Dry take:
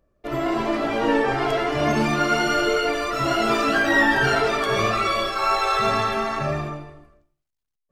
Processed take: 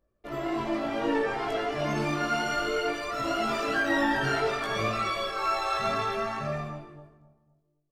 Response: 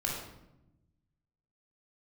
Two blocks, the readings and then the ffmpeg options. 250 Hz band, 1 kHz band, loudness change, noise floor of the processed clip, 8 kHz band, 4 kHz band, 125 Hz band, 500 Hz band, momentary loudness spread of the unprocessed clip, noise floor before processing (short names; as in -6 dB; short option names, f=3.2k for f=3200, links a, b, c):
-7.0 dB, -7.0 dB, -7.5 dB, -73 dBFS, -7.5 dB, -7.5 dB, -7.0 dB, -7.0 dB, 7 LU, -80 dBFS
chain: -filter_complex "[0:a]asplit=2[a][b];[b]adelay=260,lowpass=f=900:p=1,volume=-13dB,asplit=2[c][d];[d]adelay=260,lowpass=f=900:p=1,volume=0.41,asplit=2[e][f];[f]adelay=260,lowpass=f=900:p=1,volume=0.41,asplit=2[g][h];[h]adelay=260,lowpass=f=900:p=1,volume=0.41[i];[a][c][e][g][i]amix=inputs=5:normalize=0,flanger=delay=18.5:depth=3:speed=0.61,volume=-4.5dB"